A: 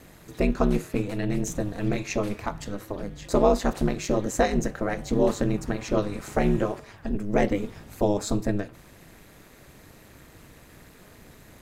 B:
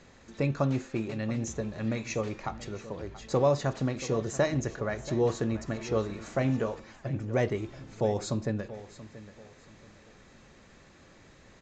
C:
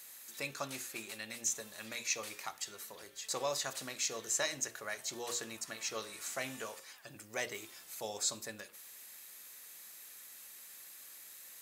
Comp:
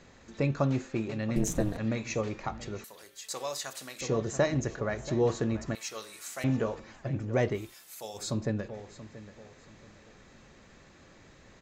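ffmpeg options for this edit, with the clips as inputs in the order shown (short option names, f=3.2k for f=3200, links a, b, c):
-filter_complex "[2:a]asplit=3[a][b][c];[1:a]asplit=5[d][e][f][g][h];[d]atrim=end=1.362[i];[0:a]atrim=start=1.358:end=1.772[j];[e]atrim=start=1.768:end=2.842[k];[a]atrim=start=2.838:end=4.012[l];[f]atrim=start=4.008:end=5.752[m];[b]atrim=start=5.748:end=6.442[n];[g]atrim=start=6.438:end=7.75[o];[c]atrim=start=7.51:end=8.37[p];[h]atrim=start=8.13[q];[i][j]acrossfade=d=0.004:c1=hsin:c2=hsin[r];[r][k]acrossfade=d=0.004:c1=hsin:c2=hsin[s];[s][l]acrossfade=d=0.004:c1=hsin:c2=hsin[t];[t][m]acrossfade=d=0.004:c1=hsin:c2=hsin[u];[u][n]acrossfade=d=0.004:c1=hsin:c2=hsin[v];[v][o]acrossfade=d=0.004:c1=hsin:c2=hsin[w];[w][p]acrossfade=d=0.24:c1=tri:c2=tri[x];[x][q]acrossfade=d=0.24:c1=tri:c2=tri"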